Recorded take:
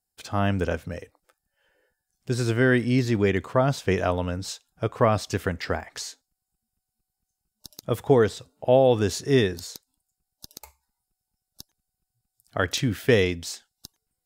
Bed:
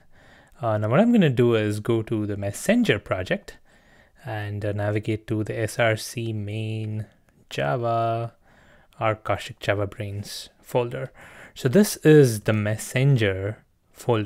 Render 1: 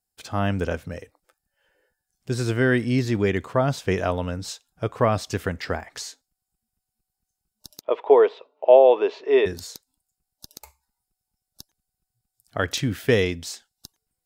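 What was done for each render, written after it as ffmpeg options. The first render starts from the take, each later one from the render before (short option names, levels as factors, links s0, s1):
-filter_complex "[0:a]asplit=3[s0][s1][s2];[s0]afade=t=out:st=7.8:d=0.02[s3];[s1]highpass=f=370:w=0.5412,highpass=f=370:w=1.3066,equalizer=f=410:t=q:w=4:g=6,equalizer=f=610:t=q:w=4:g=7,equalizer=f=970:t=q:w=4:g=10,equalizer=f=1600:t=q:w=4:g=-5,equalizer=f=2500:t=q:w=4:g=5,lowpass=f=3200:w=0.5412,lowpass=f=3200:w=1.3066,afade=t=in:st=7.8:d=0.02,afade=t=out:st=9.45:d=0.02[s4];[s2]afade=t=in:st=9.45:d=0.02[s5];[s3][s4][s5]amix=inputs=3:normalize=0"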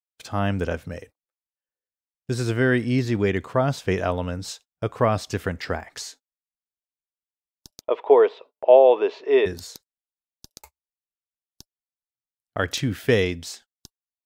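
-af "agate=range=0.0224:threshold=0.00562:ratio=16:detection=peak,adynamicequalizer=threshold=0.01:dfrequency=4700:dqfactor=0.7:tfrequency=4700:tqfactor=0.7:attack=5:release=100:ratio=0.375:range=2:mode=cutabove:tftype=highshelf"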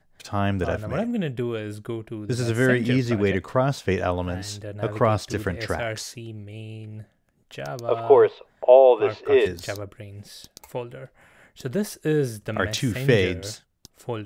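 -filter_complex "[1:a]volume=0.376[s0];[0:a][s0]amix=inputs=2:normalize=0"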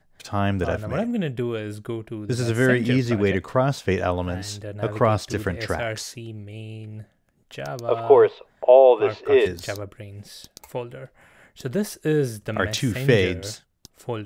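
-af "volume=1.12,alimiter=limit=0.708:level=0:latency=1"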